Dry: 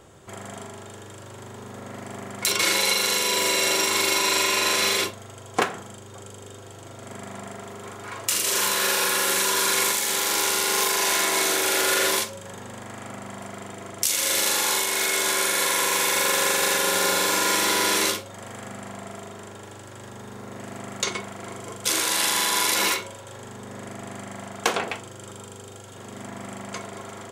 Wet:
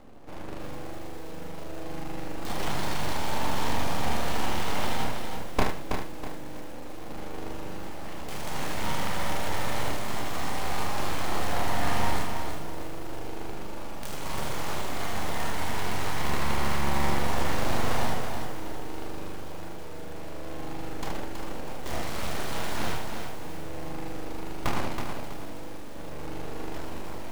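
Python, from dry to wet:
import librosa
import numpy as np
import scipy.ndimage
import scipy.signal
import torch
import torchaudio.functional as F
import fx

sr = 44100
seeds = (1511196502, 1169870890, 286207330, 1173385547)

p1 = scipy.signal.medfilt(x, 41)
p2 = fx.highpass(p1, sr, hz=48.0, slope=6)
p3 = np.abs(p2)
p4 = p3 + fx.room_early_taps(p3, sr, ms=(28, 74), db=(-6.5, -6.5), dry=0)
p5 = fx.echo_crushed(p4, sr, ms=324, feedback_pct=35, bits=8, wet_db=-6)
y = F.gain(torch.from_numpy(p5), 4.0).numpy()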